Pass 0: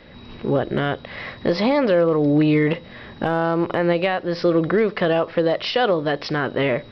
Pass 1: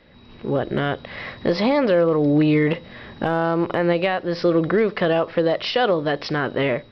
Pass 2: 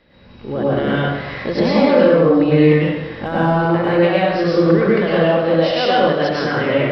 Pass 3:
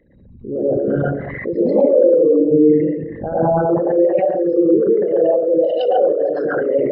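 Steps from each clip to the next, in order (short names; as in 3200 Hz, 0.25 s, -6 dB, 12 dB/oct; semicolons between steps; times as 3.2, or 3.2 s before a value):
AGC gain up to 9 dB; gain -7.5 dB
plate-style reverb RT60 1.1 s, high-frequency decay 0.8×, pre-delay 90 ms, DRR -7 dB; gain -3 dB
formant sharpening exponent 3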